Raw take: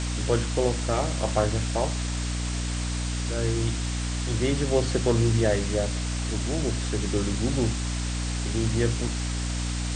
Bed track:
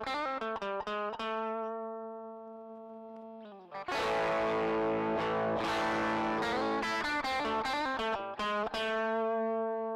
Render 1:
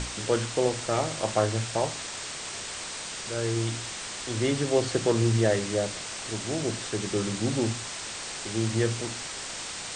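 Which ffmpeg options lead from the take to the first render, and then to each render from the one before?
-af "bandreject=f=60:t=h:w=6,bandreject=f=120:t=h:w=6,bandreject=f=180:t=h:w=6,bandreject=f=240:t=h:w=6,bandreject=f=300:t=h:w=6"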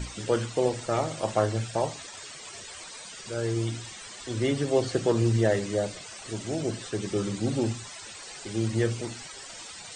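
-af "afftdn=nr=14:nf=-37"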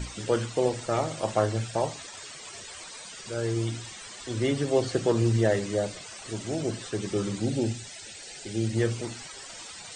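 -filter_complex "[0:a]asettb=1/sr,asplit=3[a][b][c];[a]atrim=end=7.454[d];[b]atrim=start=7.45:end=8.77,asetpts=PTS-STARTPTS,afade=t=in:d=0.004:c=qsin,afade=t=out:st=1.316:d=0.004:c=qsin,equalizer=f=1.1k:t=o:w=0.48:g=-14.5[e];[c]atrim=start=8.766[f];[d][e]acrossfade=d=0.004:c1=hsin:c2=qsin[g];[g][f]acrossfade=d=0.004:c1=qsin:c2=hsin"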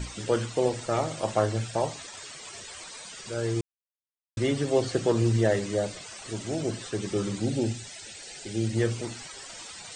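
-filter_complex "[0:a]asplit=3[a][b][c];[a]atrim=end=3.61,asetpts=PTS-STARTPTS,afade=t=out:st=3.606:d=0.004:c=hsin[d];[b]atrim=start=3.61:end=4.37,asetpts=PTS-STARTPTS,volume=0[e];[c]atrim=start=4.37,asetpts=PTS-STARTPTS,afade=t=in:d=0.004:c=hsin[f];[d][e][f]concat=n=3:v=0:a=1"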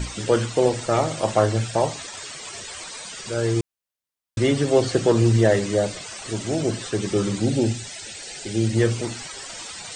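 -af "acontrast=65"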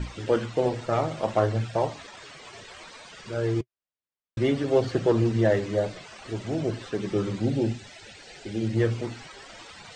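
-af "flanger=delay=0.6:depth=7.8:regen=-61:speed=0.61:shape=triangular,adynamicsmooth=sensitivity=1:basefreq=3.8k"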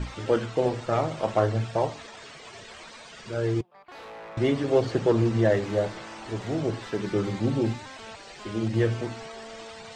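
-filter_complex "[1:a]volume=-11dB[a];[0:a][a]amix=inputs=2:normalize=0"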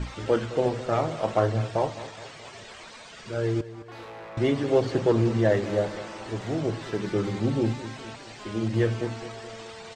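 -af "aecho=1:1:212|424|636|848|1060:0.178|0.0907|0.0463|0.0236|0.012"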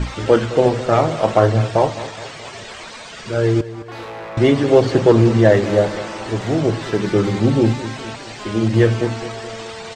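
-af "volume=10dB,alimiter=limit=-1dB:level=0:latency=1"

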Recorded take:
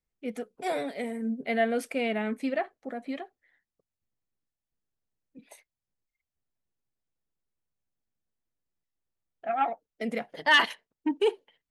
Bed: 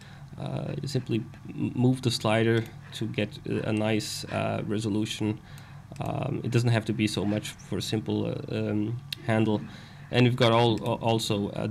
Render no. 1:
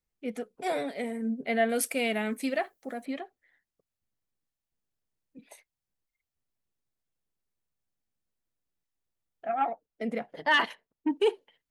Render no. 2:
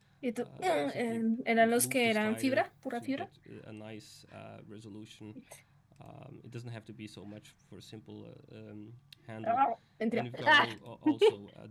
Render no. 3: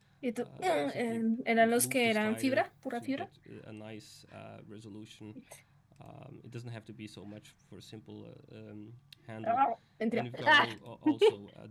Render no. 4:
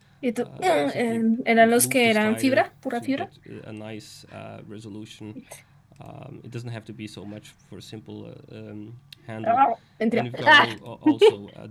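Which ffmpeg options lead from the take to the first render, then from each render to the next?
-filter_complex "[0:a]asettb=1/sr,asplit=3[a][b][c];[a]atrim=end=1.694[d];[b]atrim=start=1.69:end=3.06,asetpts=PTS-STARTPTS,afade=t=in:d=0.004:c=qsin,afade=t=out:st=1.366:d=0.004:c=qsin,aemphasis=mode=production:type=75fm[e];[c]atrim=start=3.056[f];[d][e]acrossfade=d=0.004:c1=hsin:c2=qsin[g];[g][f]acrossfade=d=0.004:c1=qsin:c2=hsin,asettb=1/sr,asplit=3[h][i][j];[h]atrim=end=9.474[k];[i]atrim=start=9.47:end=11.09,asetpts=PTS-STARTPTS,afade=t=in:d=0.004:c=qsin,afade=t=out:st=1.616:d=0.004:c=qsin,highshelf=f=2.2k:g=-8.5[l];[j]atrim=start=11.086[m];[k][l]acrossfade=d=0.004:c1=hsin:c2=qsin[n];[n][m]acrossfade=d=0.004:c1=qsin:c2=hsin"
-filter_complex "[1:a]volume=-20dB[a];[0:a][a]amix=inputs=2:normalize=0"
-af anull
-af "volume=9.5dB"

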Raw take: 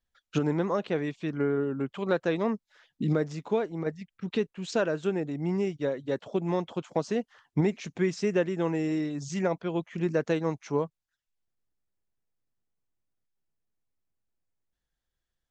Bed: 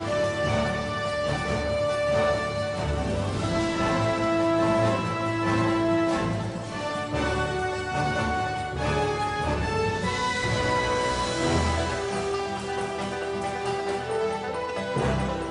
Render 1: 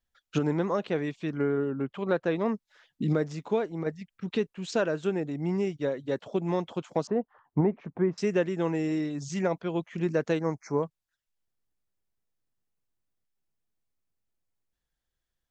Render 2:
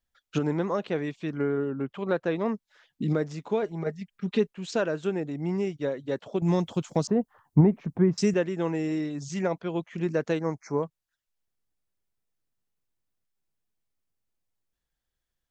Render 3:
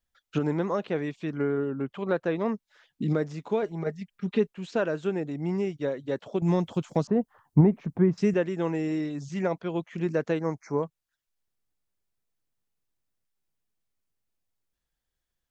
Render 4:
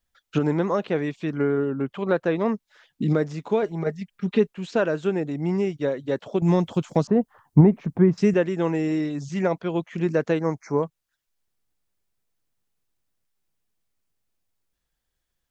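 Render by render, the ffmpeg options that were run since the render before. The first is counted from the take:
-filter_complex "[0:a]asettb=1/sr,asplit=3[a][b][c];[a]atrim=end=1.704[d];[b]atrim=start=1.7:end=2.46,asetpts=PTS-STARTPTS,afade=t=in:d=0.004:c=qsin,afade=t=out:st=0.756:d=0.004:c=qsin,highshelf=f=5.2k:g=-11.5[e];[c]atrim=start=2.456[f];[d][e]acrossfade=d=0.004:c1=hsin:c2=qsin[g];[g][f]acrossfade=d=0.004:c1=qsin:c2=hsin,asettb=1/sr,asplit=3[h][i][j];[h]atrim=end=7.074[k];[i]atrim=start=7.07:end=8.18,asetpts=PTS-STARTPTS,afade=t=in:d=0.004:c=qsin,afade=t=out:st=1.106:d=0.004:c=qsin,lowpass=f=1k:t=q:w=1.6[l];[j]atrim=start=8.176[m];[k][l]acrossfade=d=0.004:c1=hsin:c2=qsin[n];[n][m]acrossfade=d=0.004:c1=qsin:c2=hsin,asettb=1/sr,asplit=3[o][p][q];[o]atrim=end=10.394[r];[p]atrim=start=10.39:end=10.83,asetpts=PTS-STARTPTS,afade=t=in:d=0.004:c=qsin,afade=t=out:st=0.436:d=0.004:c=qsin,asuperstop=centerf=3200:order=8:qfactor=1.4[s];[q]atrim=start=10.826[t];[r][s]acrossfade=d=0.004:c1=hsin:c2=qsin[u];[u][t]acrossfade=d=0.004:c1=qsin:c2=hsin"
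-filter_complex "[0:a]asettb=1/sr,asplit=3[a][b][c];[a]atrim=end=3.624[d];[b]atrim=start=3.62:end=4.53,asetpts=PTS-STARTPTS,afade=t=in:d=0.004:c=qsin,afade=t=out:st=0.906:d=0.004:c=qsin,aecho=1:1:4.9:0.65,atrim=end_sample=40131[e];[c]atrim=start=4.526[f];[d][e]acrossfade=d=0.004:c1=hsin:c2=qsin[g];[g][f]acrossfade=d=0.004:c1=qsin:c2=hsin,asettb=1/sr,asplit=3[h][i][j];[h]atrim=end=6.424[k];[i]atrim=start=6.42:end=8.34,asetpts=PTS-STARTPTS,afade=t=in:d=0.004:c=qsin,afade=t=out:st=1.916:d=0.004:c=qsin,bass=f=250:g=10,treble=f=4k:g=11[l];[j]atrim=start=8.336[m];[k][l]acrossfade=d=0.004:c1=hsin:c2=qsin[n];[n][m]acrossfade=d=0.004:c1=qsin:c2=hsin"
-filter_complex "[0:a]acrossover=split=3100[a][b];[b]acompressor=threshold=-50dB:ratio=4:attack=1:release=60[c];[a][c]amix=inputs=2:normalize=0"
-af "volume=4.5dB"

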